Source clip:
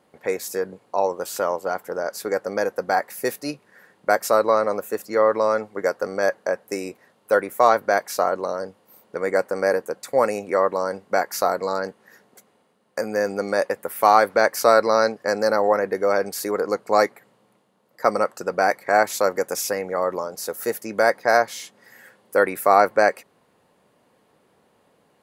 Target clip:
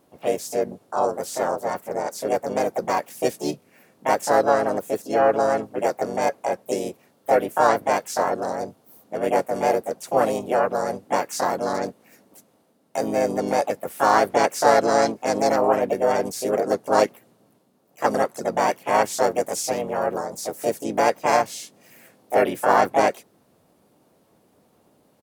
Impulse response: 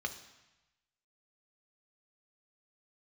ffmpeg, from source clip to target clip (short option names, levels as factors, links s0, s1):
-filter_complex "[0:a]equalizer=f=1500:t=o:w=2.9:g=-12.5,asplit=4[s0][s1][s2][s3];[s1]asetrate=35002,aresample=44100,atempo=1.25992,volume=0.251[s4];[s2]asetrate=55563,aresample=44100,atempo=0.793701,volume=0.891[s5];[s3]asetrate=66075,aresample=44100,atempo=0.66742,volume=0.562[s6];[s0][s4][s5][s6]amix=inputs=4:normalize=0,acrossover=split=9100[s7][s8];[s8]acompressor=threshold=0.00355:ratio=4:attack=1:release=60[s9];[s7][s9]amix=inputs=2:normalize=0,volume=1.41"